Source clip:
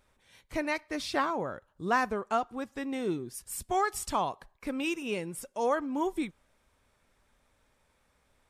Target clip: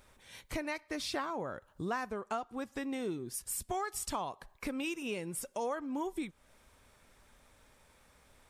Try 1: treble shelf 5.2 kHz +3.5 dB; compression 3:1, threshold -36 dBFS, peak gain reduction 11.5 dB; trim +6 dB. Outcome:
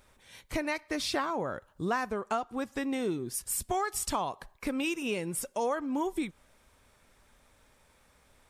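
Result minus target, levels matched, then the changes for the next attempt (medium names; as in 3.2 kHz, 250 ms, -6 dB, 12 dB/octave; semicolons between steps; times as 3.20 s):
compression: peak gain reduction -5.5 dB
change: compression 3:1, threshold -44 dBFS, peak gain reduction 16.5 dB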